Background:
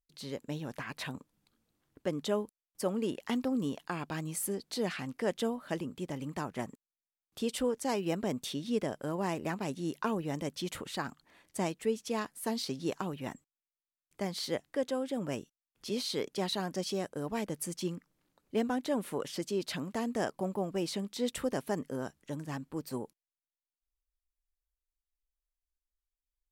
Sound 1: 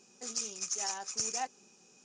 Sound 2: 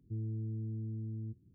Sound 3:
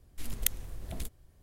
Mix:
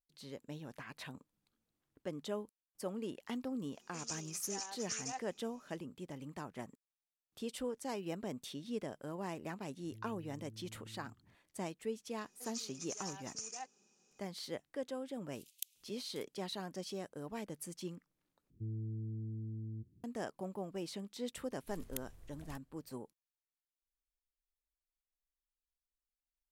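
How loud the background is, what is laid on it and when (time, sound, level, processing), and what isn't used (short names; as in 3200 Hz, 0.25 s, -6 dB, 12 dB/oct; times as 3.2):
background -8.5 dB
3.72 add 1 -7.5 dB
9.81 add 2 -5 dB + compressor 2.5:1, threshold -53 dBFS
12.19 add 1 -10.5 dB
15.16 add 3 -13.5 dB + steep high-pass 2600 Hz 48 dB/oct
18.5 replace with 2 -3 dB
21.5 add 3 -15.5 dB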